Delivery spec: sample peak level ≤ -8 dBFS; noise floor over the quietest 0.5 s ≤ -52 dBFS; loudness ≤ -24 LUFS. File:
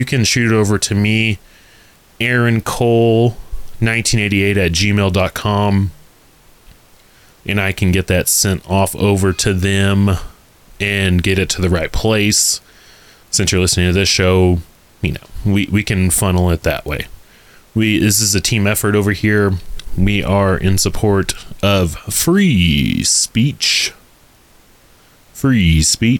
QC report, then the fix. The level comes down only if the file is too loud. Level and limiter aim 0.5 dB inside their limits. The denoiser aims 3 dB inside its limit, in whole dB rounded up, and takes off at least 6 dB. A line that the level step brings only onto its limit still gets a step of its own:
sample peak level -4.0 dBFS: fail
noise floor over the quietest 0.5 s -48 dBFS: fail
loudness -14.5 LUFS: fail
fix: trim -10 dB

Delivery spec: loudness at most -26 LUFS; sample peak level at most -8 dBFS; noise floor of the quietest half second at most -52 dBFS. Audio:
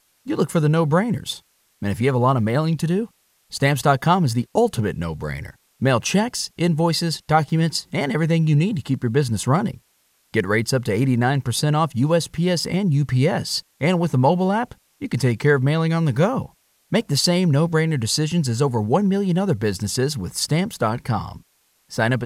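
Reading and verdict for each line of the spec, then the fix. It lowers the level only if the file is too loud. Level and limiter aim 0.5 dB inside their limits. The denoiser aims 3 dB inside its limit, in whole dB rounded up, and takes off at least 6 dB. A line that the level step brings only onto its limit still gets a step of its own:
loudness -20.5 LUFS: fail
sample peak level -4.5 dBFS: fail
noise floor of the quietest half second -64 dBFS: pass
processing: trim -6 dB

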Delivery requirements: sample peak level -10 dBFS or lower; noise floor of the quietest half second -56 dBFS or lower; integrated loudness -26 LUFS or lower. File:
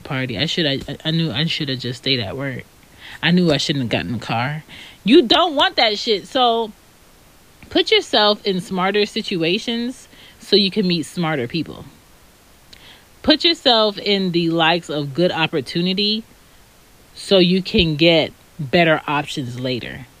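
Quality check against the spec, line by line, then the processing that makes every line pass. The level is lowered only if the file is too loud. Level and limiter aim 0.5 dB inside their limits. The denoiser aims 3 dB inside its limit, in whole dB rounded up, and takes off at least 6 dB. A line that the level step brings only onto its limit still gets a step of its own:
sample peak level -2.0 dBFS: fail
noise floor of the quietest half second -49 dBFS: fail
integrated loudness -17.5 LUFS: fail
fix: trim -9 dB

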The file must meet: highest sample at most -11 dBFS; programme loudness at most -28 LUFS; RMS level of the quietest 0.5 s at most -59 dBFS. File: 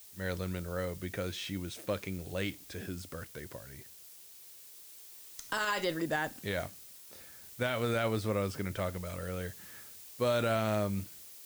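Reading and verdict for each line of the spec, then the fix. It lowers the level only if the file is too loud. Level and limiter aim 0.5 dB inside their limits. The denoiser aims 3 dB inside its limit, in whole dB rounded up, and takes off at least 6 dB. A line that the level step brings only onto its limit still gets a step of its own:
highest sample -21.0 dBFS: pass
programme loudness -35.0 LUFS: pass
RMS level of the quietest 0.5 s -53 dBFS: fail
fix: noise reduction 9 dB, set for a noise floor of -53 dBFS

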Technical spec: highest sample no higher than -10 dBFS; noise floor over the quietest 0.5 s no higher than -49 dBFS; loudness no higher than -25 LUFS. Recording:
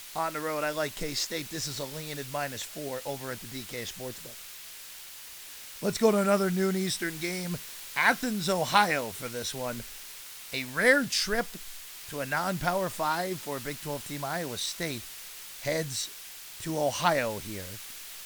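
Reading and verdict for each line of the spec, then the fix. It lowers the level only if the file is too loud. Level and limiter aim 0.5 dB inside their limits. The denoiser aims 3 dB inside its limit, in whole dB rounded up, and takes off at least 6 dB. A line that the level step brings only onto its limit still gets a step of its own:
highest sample -7.5 dBFS: fail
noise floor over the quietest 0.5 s -45 dBFS: fail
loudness -30.0 LUFS: pass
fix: noise reduction 7 dB, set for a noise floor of -45 dBFS; peak limiter -10.5 dBFS

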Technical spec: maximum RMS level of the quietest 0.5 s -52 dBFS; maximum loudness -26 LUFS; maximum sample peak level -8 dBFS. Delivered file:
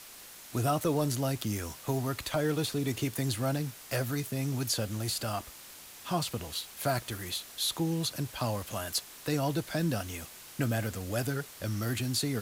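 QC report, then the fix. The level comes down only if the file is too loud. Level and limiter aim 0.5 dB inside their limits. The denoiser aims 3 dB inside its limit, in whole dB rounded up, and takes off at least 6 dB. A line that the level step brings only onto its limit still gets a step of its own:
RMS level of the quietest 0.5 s -49 dBFS: fail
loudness -32.5 LUFS: pass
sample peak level -17.5 dBFS: pass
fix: noise reduction 6 dB, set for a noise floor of -49 dBFS

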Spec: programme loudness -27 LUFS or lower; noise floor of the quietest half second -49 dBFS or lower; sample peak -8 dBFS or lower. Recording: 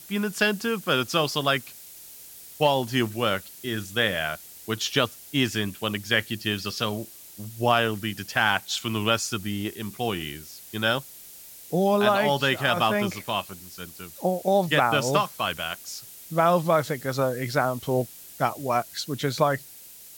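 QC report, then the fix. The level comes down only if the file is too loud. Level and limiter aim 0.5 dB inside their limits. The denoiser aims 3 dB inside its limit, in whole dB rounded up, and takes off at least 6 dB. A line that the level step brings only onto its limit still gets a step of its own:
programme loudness -25.5 LUFS: fail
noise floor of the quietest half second -46 dBFS: fail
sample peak -7.0 dBFS: fail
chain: noise reduction 6 dB, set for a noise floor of -46 dBFS; trim -2 dB

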